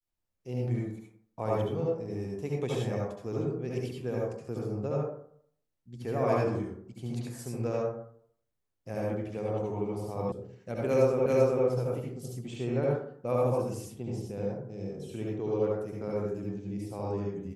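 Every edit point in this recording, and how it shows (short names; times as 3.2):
10.32 sound cut off
11.26 repeat of the last 0.39 s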